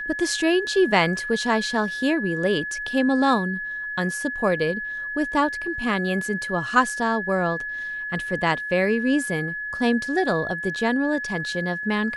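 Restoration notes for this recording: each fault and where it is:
whistle 1,700 Hz −28 dBFS

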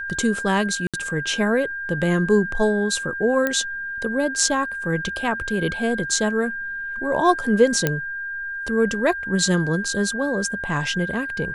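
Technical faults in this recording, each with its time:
whistle 1,600 Hz −27 dBFS
0:00.87–0:00.94: drop-out 66 ms
0:03.47: click −9 dBFS
0:07.87: click −5 dBFS

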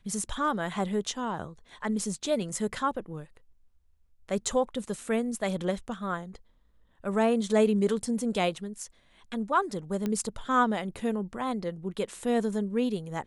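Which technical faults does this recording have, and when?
0:10.06: click −18 dBFS

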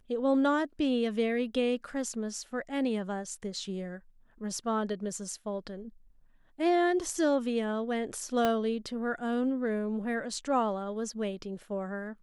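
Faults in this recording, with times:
0:08.45: click −14 dBFS

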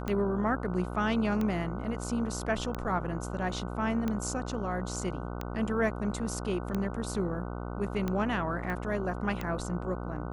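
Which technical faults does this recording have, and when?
mains buzz 60 Hz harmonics 25 −37 dBFS
scratch tick 45 rpm −19 dBFS
0:08.70: click −24 dBFS

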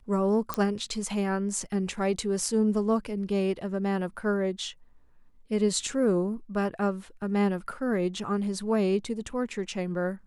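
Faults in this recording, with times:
0:00.54: click −12 dBFS

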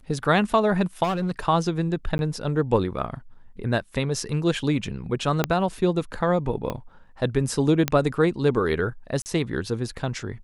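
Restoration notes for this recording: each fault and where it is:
0:01.03–0:01.39: clipping −21 dBFS
0:02.18–0:02.19: drop-out 11 ms
0:05.44: click −6 dBFS
0:06.70: click −15 dBFS
0:07.88: click −6 dBFS
0:09.22–0:09.26: drop-out 39 ms

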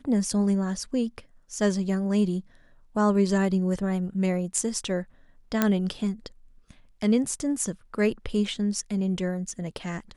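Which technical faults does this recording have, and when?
0:05.62: click −7 dBFS

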